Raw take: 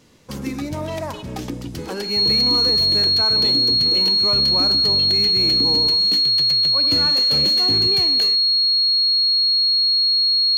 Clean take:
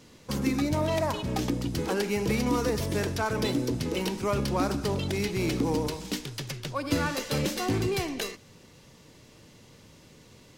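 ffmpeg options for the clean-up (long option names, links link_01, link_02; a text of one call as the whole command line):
ffmpeg -i in.wav -af "bandreject=frequency=4300:width=30" out.wav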